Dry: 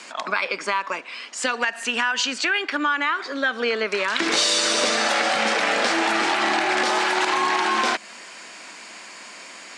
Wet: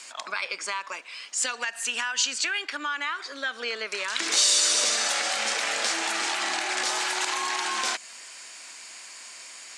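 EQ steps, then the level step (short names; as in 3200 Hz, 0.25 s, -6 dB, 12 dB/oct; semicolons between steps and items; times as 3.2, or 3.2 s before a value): RIAA curve recording; dynamic EQ 6900 Hz, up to +3 dB, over -33 dBFS; -9.0 dB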